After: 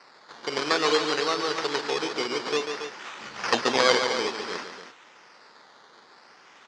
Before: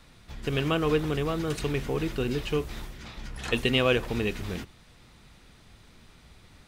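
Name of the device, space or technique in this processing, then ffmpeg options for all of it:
circuit-bent sampling toy: -filter_complex "[0:a]highpass=f=150:p=1,asettb=1/sr,asplit=3[a][b][c];[a]atrim=end=3.204[d];[b]atrim=start=3.2:end=3.62,asetpts=PTS-STARTPTS,afade=t=in:d=0.004:c=qsin,afade=t=out:st=0.416:d=0.004:c=qsin,bass=f=250:g=12,treble=f=4k:g=3[e];[c]atrim=start=3.616[f];[d][e]acrossfade=d=0.004:c1=hsin:c2=qsin[g];[g][f]acrossfade=d=0.004:c1=qsin:c2=hsin,acrusher=samples=13:mix=1:aa=0.000001:lfo=1:lforange=7.8:lforate=0.56,highpass=580,equalizer=f=660:t=q:w=4:g=-5,equalizer=f=2.4k:t=q:w=4:g=-3,equalizer=f=4.8k:t=q:w=4:g=6,lowpass=f=5.9k:w=0.5412,lowpass=f=5.9k:w=1.3066,aecho=1:1:142.9|277:0.447|0.316,volume=8dB"

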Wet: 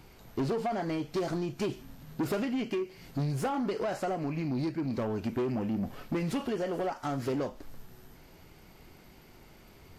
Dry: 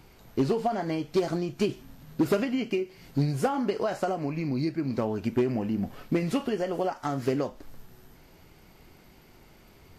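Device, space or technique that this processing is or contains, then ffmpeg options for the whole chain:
saturation between pre-emphasis and de-emphasis: -af "highshelf=f=3.8k:g=10,asoftclip=type=tanh:threshold=-26dB,highshelf=f=3.8k:g=-10"

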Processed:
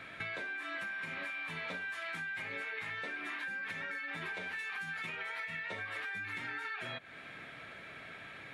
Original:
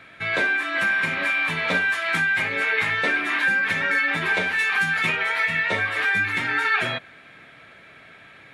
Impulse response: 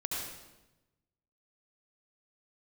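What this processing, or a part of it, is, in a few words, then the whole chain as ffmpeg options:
serial compression, leveller first: -af "acompressor=threshold=-26dB:ratio=2.5,acompressor=threshold=-38dB:ratio=5,volume=-1.5dB"

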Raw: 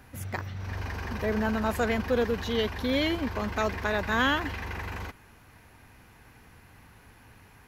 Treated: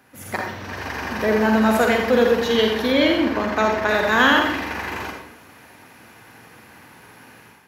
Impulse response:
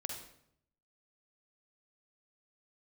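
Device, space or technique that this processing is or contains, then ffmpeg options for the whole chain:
far laptop microphone: -filter_complex "[1:a]atrim=start_sample=2205[a];[0:a][a]afir=irnorm=-1:irlink=0,highpass=200,dynaudnorm=f=100:g=5:m=9dB,asettb=1/sr,asplit=3[b][c][d];[b]atrim=end=2.924[e];[c]atrim=start=2.92:end=3.89,asetpts=PTS-STARTPTS,afade=t=in:d=0.004:c=qsin,afade=t=out:st=0.966:d=0.004:c=qsin,highshelf=f=4.6k:g=-7.5[f];[d]atrim=start=3.886[g];[e][f]acrossfade=d=0.004:c1=hsin:c2=qsin[h];[h][g]acrossfade=d=0.004:c1=qsin:c2=hsin,volume=2dB"

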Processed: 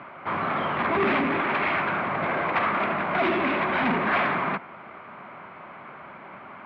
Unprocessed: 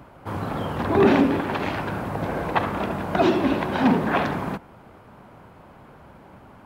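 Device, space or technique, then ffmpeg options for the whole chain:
overdrive pedal into a guitar cabinet: -filter_complex "[0:a]asplit=2[a][b];[b]highpass=f=720:p=1,volume=26dB,asoftclip=type=tanh:threshold=-5dB[c];[a][c]amix=inputs=2:normalize=0,lowpass=f=1.5k:p=1,volume=-6dB,highpass=97,equalizer=f=110:t=q:w=4:g=-5,equalizer=f=290:t=q:w=4:g=-5,equalizer=f=480:t=q:w=4:g=-8,equalizer=f=840:t=q:w=4:g=-5,equalizer=f=1.2k:t=q:w=4:g=4,equalizer=f=2.2k:t=q:w=4:g=9,lowpass=f=3.7k:w=0.5412,lowpass=f=3.7k:w=1.3066,volume=-8.5dB"

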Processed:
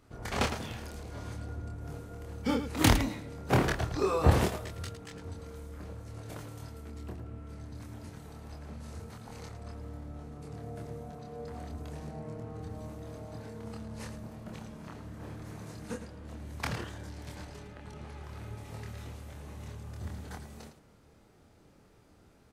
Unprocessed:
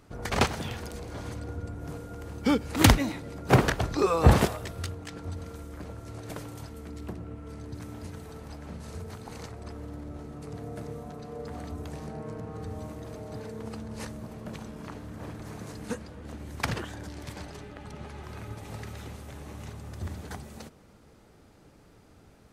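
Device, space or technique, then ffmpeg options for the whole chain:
slapback doubling: -filter_complex "[0:a]asplit=3[a][b][c];[b]adelay=26,volume=-3dB[d];[c]adelay=109,volume=-10dB[e];[a][d][e]amix=inputs=3:normalize=0,volume=-6.5dB"

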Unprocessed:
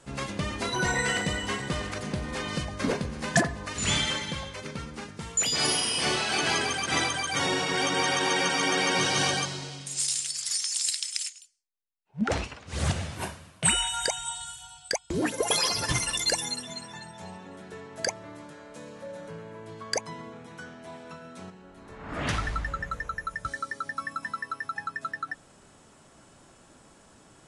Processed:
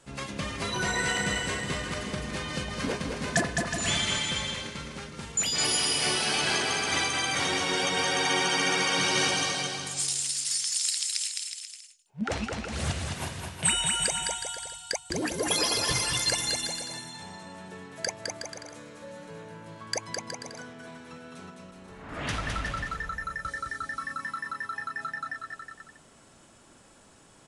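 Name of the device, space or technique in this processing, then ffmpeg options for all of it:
presence and air boost: -af "equalizer=f=3k:t=o:w=1.9:g=2.5,highshelf=f=9.5k:g=5,aecho=1:1:210|367.5|485.6|574.2|640.7:0.631|0.398|0.251|0.158|0.1,volume=-4dB"

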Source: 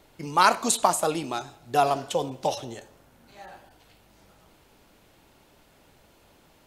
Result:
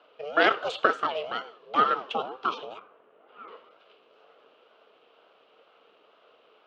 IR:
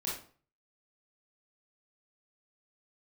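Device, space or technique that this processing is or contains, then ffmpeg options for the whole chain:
voice changer toy: -filter_complex "[0:a]aeval=exprs='val(0)*sin(2*PI*470*n/s+470*0.4/2.1*sin(2*PI*2.1*n/s))':c=same,highpass=430,equalizer=f=450:t=q:w=4:g=10,equalizer=f=640:t=q:w=4:g=4,equalizer=f=910:t=q:w=4:g=-3,equalizer=f=1.3k:t=q:w=4:g=7,equalizer=f=1.9k:t=q:w=4:g=-7,equalizer=f=2.9k:t=q:w=4:g=8,lowpass=f=3.6k:w=0.5412,lowpass=f=3.6k:w=1.3066,asettb=1/sr,asplit=3[a][b][c];[a]atrim=end=2.784[d];[b]atrim=start=2.78:end=3.48,asetpts=PTS-STARTPTS,afade=t=in:d=0.004:c=qsin,afade=t=out:st=0.696:d=0.004:c=qsin,lowpass=2.1k[e];[c]atrim=start=3.476[f];[d][e]acrossfade=d=0.004:c1=hsin:c2=qsin[g];[g][f]acrossfade=d=0.004:c1=qsin:c2=hsin"

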